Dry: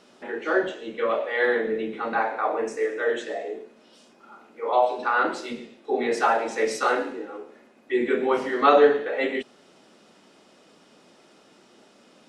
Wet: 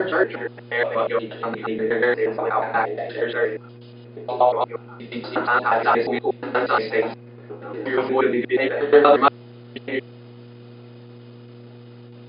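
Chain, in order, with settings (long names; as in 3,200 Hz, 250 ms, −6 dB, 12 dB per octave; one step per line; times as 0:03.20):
slices reordered back to front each 119 ms, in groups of 6
linear-phase brick-wall low-pass 5,100 Hz
noise gate with hold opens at −46 dBFS
hum with harmonics 120 Hz, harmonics 4, −46 dBFS −4 dB per octave
level +3.5 dB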